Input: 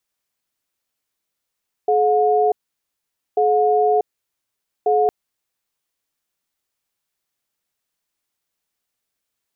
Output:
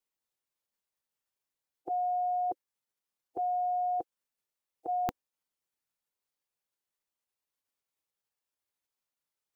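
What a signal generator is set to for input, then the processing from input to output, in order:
cadence 426 Hz, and 721 Hz, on 0.64 s, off 0.85 s, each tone -16 dBFS 3.21 s
peaking EQ 680 Hz -12.5 dB 0.55 oct; spectral gate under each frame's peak -10 dB weak

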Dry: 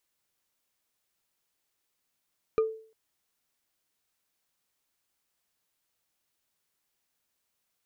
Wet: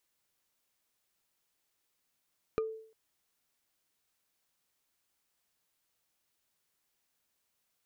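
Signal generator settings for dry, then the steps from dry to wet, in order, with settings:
wood hit bar, length 0.35 s, lowest mode 442 Hz, decay 0.46 s, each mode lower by 10 dB, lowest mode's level -18.5 dB
compression 6:1, threshold -31 dBFS

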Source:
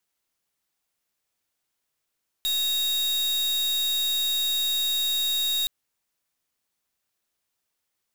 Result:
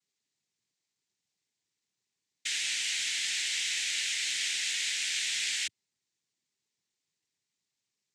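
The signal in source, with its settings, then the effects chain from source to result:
pulse 3.76 kHz, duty 42% -25 dBFS 3.22 s
high-order bell 940 Hz -9.5 dB 2.6 oct; peak limiter -26.5 dBFS; noise-vocoded speech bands 6

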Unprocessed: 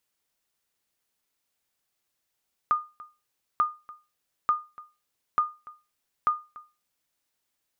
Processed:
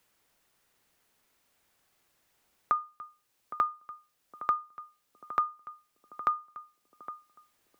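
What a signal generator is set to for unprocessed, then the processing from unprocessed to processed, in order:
sonar ping 1.22 kHz, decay 0.28 s, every 0.89 s, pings 5, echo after 0.29 s, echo -21 dB -15 dBFS
band-passed feedback delay 813 ms, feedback 48%, band-pass 340 Hz, level -13 dB; three bands compressed up and down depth 40%

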